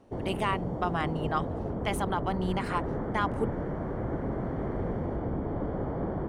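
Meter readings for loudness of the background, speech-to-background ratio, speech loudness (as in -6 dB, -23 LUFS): -34.0 LUFS, 1.0 dB, -33.0 LUFS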